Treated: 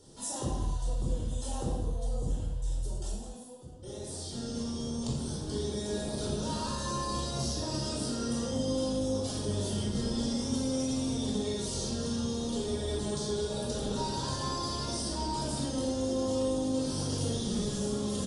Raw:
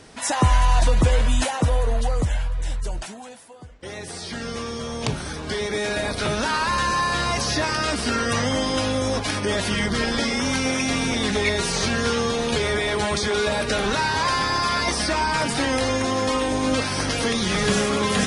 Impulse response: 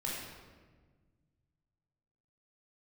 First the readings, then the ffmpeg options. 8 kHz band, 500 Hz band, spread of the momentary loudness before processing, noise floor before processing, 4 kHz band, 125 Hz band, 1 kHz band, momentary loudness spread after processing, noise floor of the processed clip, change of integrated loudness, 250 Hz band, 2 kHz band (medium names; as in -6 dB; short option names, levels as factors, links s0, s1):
-8.5 dB, -9.5 dB, 10 LU, -37 dBFS, -12.5 dB, -8.5 dB, -15.5 dB, 5 LU, -41 dBFS, -10.5 dB, -6.5 dB, -25.5 dB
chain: -filter_complex "[0:a]firequalizer=gain_entry='entry(370,0);entry(2200,-23);entry(3200,-4);entry(7200,4)':delay=0.05:min_phase=1,acompressor=threshold=0.0562:ratio=10[s0];[1:a]atrim=start_sample=2205,afade=t=out:st=0.38:d=0.01,atrim=end_sample=17199[s1];[s0][s1]afir=irnorm=-1:irlink=0,volume=0.398"